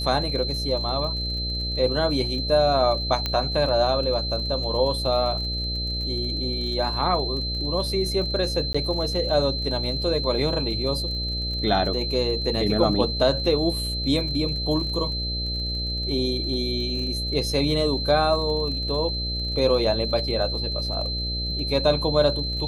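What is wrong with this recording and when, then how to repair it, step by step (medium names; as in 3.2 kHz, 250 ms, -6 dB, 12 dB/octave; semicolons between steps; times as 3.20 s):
buzz 60 Hz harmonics 11 -30 dBFS
crackle 34 per s -33 dBFS
whine 4.1 kHz -28 dBFS
3.26 s: pop -11 dBFS
8.73–8.74 s: dropout 15 ms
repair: de-click; de-hum 60 Hz, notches 11; band-stop 4.1 kHz, Q 30; interpolate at 8.73 s, 15 ms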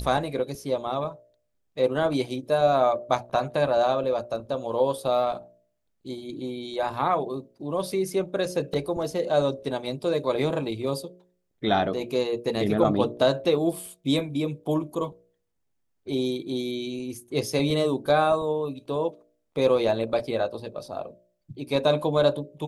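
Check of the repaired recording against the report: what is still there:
nothing left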